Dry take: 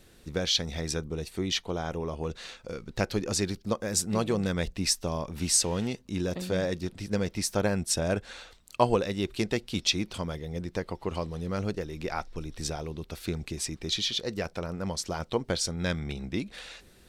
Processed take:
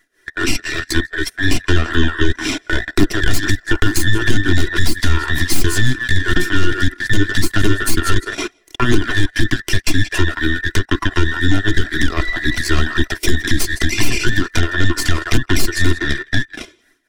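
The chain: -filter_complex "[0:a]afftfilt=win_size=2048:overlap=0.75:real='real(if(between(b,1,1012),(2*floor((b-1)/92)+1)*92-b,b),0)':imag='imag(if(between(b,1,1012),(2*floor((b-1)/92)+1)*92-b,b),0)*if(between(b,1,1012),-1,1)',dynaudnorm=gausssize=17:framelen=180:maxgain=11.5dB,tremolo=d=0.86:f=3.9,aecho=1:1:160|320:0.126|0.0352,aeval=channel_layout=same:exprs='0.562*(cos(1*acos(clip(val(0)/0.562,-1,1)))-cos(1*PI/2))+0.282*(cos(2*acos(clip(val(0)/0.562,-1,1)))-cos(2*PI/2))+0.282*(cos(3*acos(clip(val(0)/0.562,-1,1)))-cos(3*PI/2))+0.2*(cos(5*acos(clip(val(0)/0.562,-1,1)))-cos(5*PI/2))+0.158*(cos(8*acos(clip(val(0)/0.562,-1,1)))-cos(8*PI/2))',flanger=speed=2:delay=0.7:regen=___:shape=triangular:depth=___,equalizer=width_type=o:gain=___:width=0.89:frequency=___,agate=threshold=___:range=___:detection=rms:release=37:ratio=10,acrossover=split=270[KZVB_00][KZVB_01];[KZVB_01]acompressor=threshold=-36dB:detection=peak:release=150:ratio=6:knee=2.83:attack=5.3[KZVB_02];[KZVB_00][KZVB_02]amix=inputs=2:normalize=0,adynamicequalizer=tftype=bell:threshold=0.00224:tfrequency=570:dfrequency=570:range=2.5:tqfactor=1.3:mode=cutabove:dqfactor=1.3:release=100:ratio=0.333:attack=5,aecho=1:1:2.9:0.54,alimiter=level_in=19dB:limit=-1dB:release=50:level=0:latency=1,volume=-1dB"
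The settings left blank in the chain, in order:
-40, 1.5, 12.5, 330, -42dB, -18dB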